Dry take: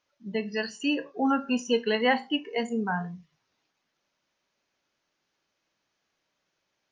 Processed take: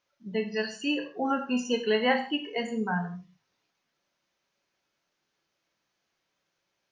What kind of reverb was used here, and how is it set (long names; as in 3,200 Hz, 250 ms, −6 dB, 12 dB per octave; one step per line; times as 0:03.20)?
reverb whose tail is shaped and stops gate 190 ms falling, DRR 5 dB
level −2 dB